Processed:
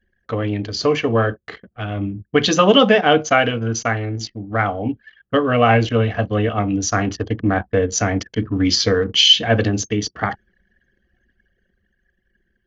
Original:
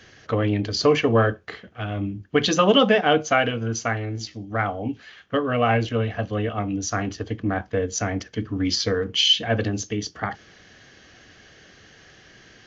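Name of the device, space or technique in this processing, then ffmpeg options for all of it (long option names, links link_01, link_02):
voice memo with heavy noise removal: -af "anlmdn=0.398,dynaudnorm=framelen=260:gausssize=13:maxgain=11.5dB"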